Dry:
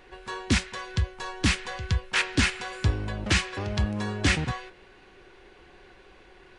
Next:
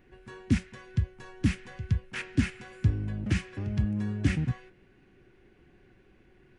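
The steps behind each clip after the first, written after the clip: graphic EQ 125/250/500/1000/4000/8000 Hz +9/+7/-5/-9/-10/-6 dB; trim -6.5 dB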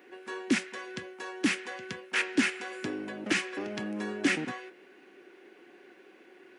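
high-pass 310 Hz 24 dB/octave; in parallel at -9 dB: saturation -29 dBFS, distortion -14 dB; on the sum: trim +6 dB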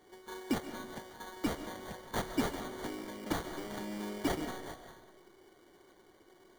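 repeats whose band climbs or falls 198 ms, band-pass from 710 Hz, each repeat 1.4 oct, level -6.5 dB; sample-rate reducer 2.6 kHz, jitter 0%; on a send at -10 dB: reverberation RT60 1.0 s, pre-delay 95 ms; on the sum: trim -6.5 dB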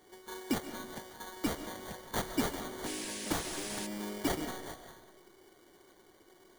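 treble shelf 4.9 kHz +6.5 dB; painted sound noise, 2.86–3.87 s, 1.5–11 kHz -43 dBFS

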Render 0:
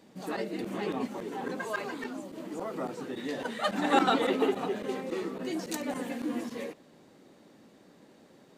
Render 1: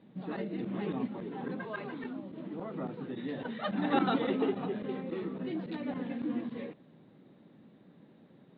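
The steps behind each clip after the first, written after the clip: elliptic low-pass 3.8 kHz, stop band 40 dB; peaking EQ 150 Hz +12.5 dB 1.8 oct; trim -6.5 dB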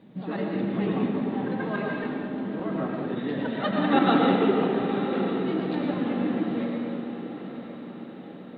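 echo that smears into a reverb 989 ms, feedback 53%, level -11 dB; algorithmic reverb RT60 1.8 s, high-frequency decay 0.6×, pre-delay 65 ms, DRR 0.5 dB; trim +6 dB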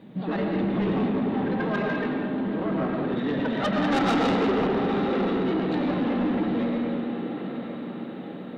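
saturation -24.5 dBFS, distortion -9 dB; trim +5 dB

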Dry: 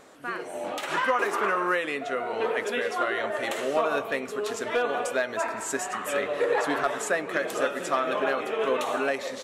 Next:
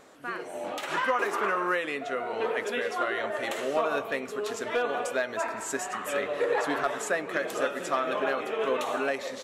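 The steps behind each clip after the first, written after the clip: peaking EQ 9.1 kHz -2.5 dB 0.24 oct; trim -2 dB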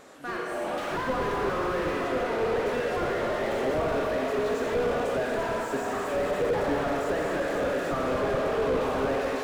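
Schroeder reverb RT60 3.6 s, combs from 31 ms, DRR 0.5 dB; slew-rate limiter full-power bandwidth 27 Hz; trim +3 dB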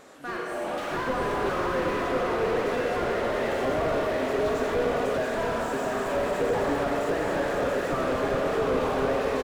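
delay 681 ms -4.5 dB

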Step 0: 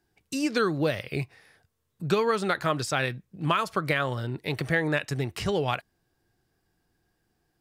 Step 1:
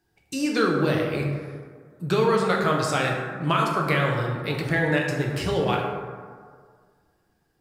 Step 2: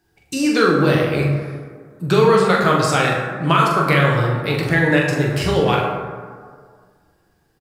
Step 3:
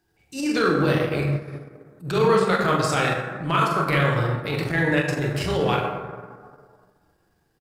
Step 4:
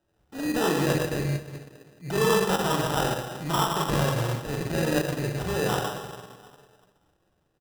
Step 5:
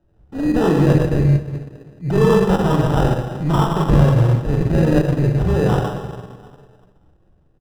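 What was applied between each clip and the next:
plate-style reverb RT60 1.8 s, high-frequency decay 0.4×, DRR -1 dB
doubling 43 ms -6 dB; trim +6 dB
transient shaper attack -11 dB, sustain -7 dB; trim -3.5 dB
sample-and-hold 20×; trim -4 dB
tilt EQ -3.5 dB/octave; trim +4 dB

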